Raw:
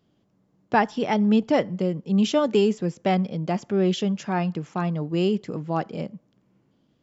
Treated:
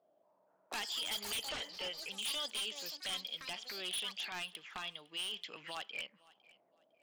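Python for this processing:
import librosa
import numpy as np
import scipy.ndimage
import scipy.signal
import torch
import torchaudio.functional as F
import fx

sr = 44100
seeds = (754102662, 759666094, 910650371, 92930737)

p1 = fx.auto_wah(x, sr, base_hz=630.0, top_hz=3300.0, q=7.3, full_db=-24.5, direction='up')
p2 = fx.low_shelf(p1, sr, hz=310.0, db=-11.0)
p3 = fx.over_compress(p2, sr, threshold_db=-51.0, ratio=-1.0)
p4 = p2 + F.gain(torch.from_numpy(p3), -2.5).numpy()
p5 = fx.spec_box(p4, sr, start_s=1.21, length_s=0.88, low_hz=390.0, high_hz=3200.0, gain_db=9)
p6 = 10.0 ** (-37.0 / 20.0) * (np.abs((p5 / 10.0 ** (-37.0 / 20.0) + 3.0) % 4.0 - 2.0) - 1.0)
p7 = fx.echo_pitch(p6, sr, ms=234, semitones=7, count=3, db_per_echo=-6.0)
p8 = fx.air_absorb(p7, sr, metres=140.0, at=(1.48, 1.97), fade=0.02)
p9 = p8 + fx.echo_feedback(p8, sr, ms=506, feedback_pct=26, wet_db=-22.5, dry=0)
p10 = fx.band_squash(p9, sr, depth_pct=100, at=(5.19, 5.75))
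y = F.gain(torch.from_numpy(p10), 4.5).numpy()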